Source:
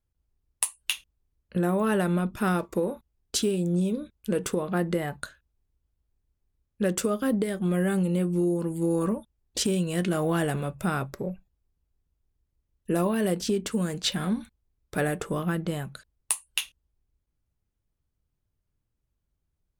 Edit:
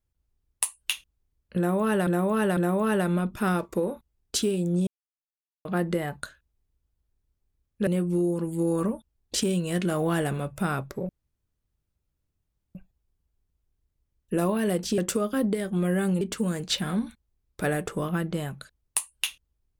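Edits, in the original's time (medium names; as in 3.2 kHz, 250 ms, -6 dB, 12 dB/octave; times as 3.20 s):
1.57–2.07 s: loop, 3 plays
3.87–4.65 s: mute
6.87–8.10 s: move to 13.55 s
11.32 s: insert room tone 1.66 s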